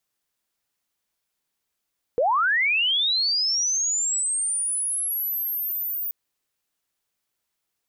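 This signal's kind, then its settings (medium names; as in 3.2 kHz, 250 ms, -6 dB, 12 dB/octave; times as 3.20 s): sweep linear 450 Hz -> 15 kHz -17.5 dBFS -> -25.5 dBFS 3.93 s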